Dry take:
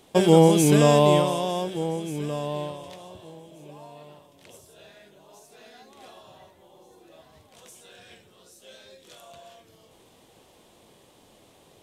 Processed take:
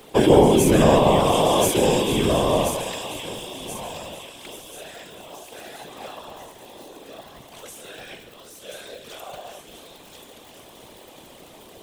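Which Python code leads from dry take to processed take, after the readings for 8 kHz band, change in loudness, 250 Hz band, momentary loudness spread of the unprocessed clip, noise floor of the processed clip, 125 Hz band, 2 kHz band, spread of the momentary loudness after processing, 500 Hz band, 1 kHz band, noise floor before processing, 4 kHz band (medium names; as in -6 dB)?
+5.0 dB, +1.5 dB, +2.5 dB, 16 LU, -47 dBFS, 0.0 dB, +5.5 dB, 23 LU, +3.5 dB, +5.0 dB, -57 dBFS, +6.0 dB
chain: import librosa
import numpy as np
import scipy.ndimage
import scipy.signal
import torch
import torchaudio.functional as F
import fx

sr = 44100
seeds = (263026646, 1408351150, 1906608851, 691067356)

p1 = fx.bass_treble(x, sr, bass_db=-3, treble_db=-8)
p2 = fx.echo_wet_highpass(p1, sr, ms=1032, feedback_pct=47, hz=2700.0, wet_db=-5.0)
p3 = fx.over_compress(p2, sr, threshold_db=-28.0, ratio=-1.0)
p4 = p2 + (p3 * librosa.db_to_amplitude(0.0))
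p5 = fx.dmg_crackle(p4, sr, seeds[0], per_s=49.0, level_db=-40.0)
p6 = fx.high_shelf(p5, sr, hz=9800.0, db=11.5)
p7 = p6 + 10.0 ** (-13.0 / 20.0) * np.pad(p6, (int(143 * sr / 1000.0), 0))[:len(p6)]
p8 = fx.whisperise(p7, sr, seeds[1])
y = p8 * librosa.db_to_amplitude(1.0)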